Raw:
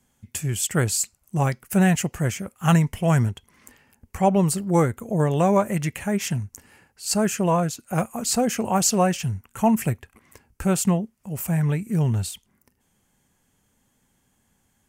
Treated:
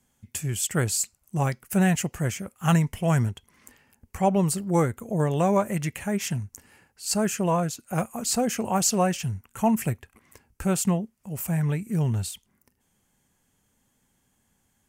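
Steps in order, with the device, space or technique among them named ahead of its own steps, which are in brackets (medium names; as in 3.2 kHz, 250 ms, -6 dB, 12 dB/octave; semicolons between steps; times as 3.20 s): exciter from parts (in parallel at -13.5 dB: high-pass 4.4 kHz 6 dB/octave + saturation -23 dBFS, distortion -11 dB); on the sum: trim -3 dB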